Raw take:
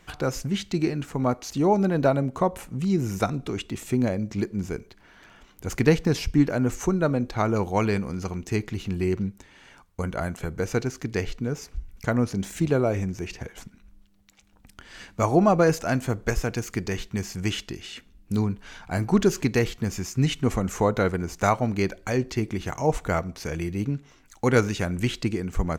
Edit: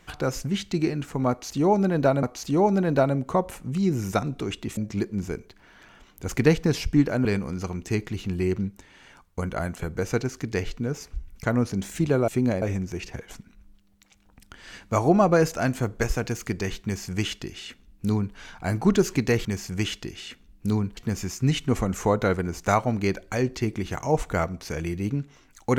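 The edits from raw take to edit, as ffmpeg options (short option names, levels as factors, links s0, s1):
-filter_complex "[0:a]asplit=8[s0][s1][s2][s3][s4][s5][s6][s7];[s0]atrim=end=2.232[s8];[s1]atrim=start=1.298:end=3.842[s9];[s2]atrim=start=4.178:end=6.662[s10];[s3]atrim=start=7.858:end=12.892[s11];[s4]atrim=start=3.838:end=4.182[s12];[s5]atrim=start=12.888:end=19.722[s13];[s6]atrim=start=17.108:end=18.632[s14];[s7]atrim=start=19.718[s15];[s8][s9]acrossfade=d=0.004:c1=hsin:c2=hsin[s16];[s16][s10]acrossfade=d=0.004:c1=hsin:c2=hsin[s17];[s17][s11]acrossfade=d=0.004:c1=hsin:c2=hsin[s18];[s18][s12]acrossfade=d=0.004:c1=hsin:c2=hsin[s19];[s19][s13]acrossfade=d=0.004:c1=hsin:c2=hsin[s20];[s20][s14]acrossfade=d=0.004:c1=hsin:c2=hsin[s21];[s21][s15]acrossfade=d=0.004:c1=hsin:c2=hsin"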